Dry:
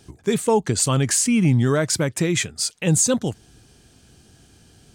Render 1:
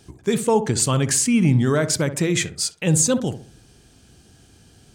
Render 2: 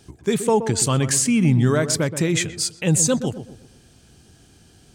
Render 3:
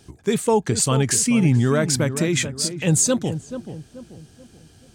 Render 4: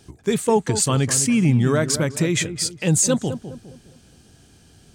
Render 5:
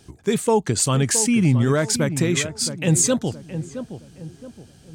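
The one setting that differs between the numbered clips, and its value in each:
filtered feedback delay, time: 63 ms, 124 ms, 433 ms, 205 ms, 669 ms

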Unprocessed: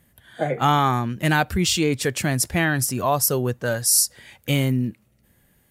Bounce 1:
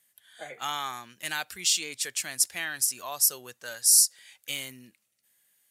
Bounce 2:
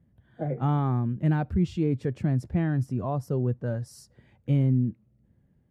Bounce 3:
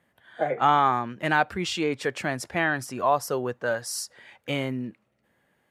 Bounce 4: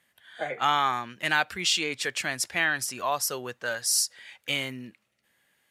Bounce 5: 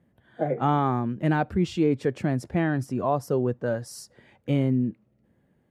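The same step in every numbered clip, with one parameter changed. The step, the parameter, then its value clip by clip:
band-pass filter, frequency: 7.7 kHz, 120 Hz, 960 Hz, 2.6 kHz, 310 Hz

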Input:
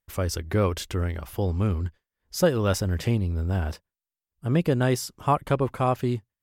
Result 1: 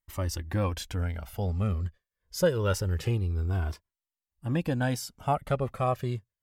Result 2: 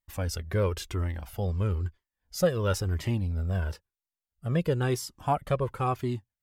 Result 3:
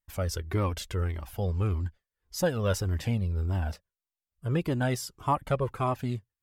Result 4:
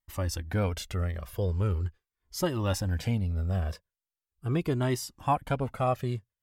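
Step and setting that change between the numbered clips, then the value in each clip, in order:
Shepard-style flanger, rate: 0.25 Hz, 0.99 Hz, 1.7 Hz, 0.41 Hz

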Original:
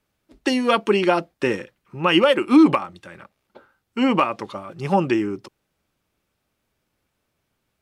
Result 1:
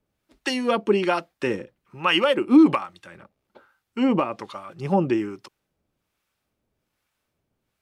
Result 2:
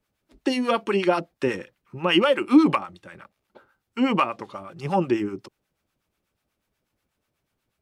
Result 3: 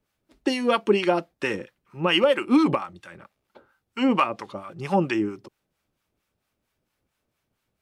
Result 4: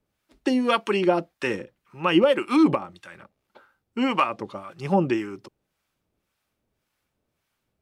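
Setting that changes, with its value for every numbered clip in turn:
harmonic tremolo, rate: 1.2 Hz, 8.2 Hz, 4.4 Hz, 1.8 Hz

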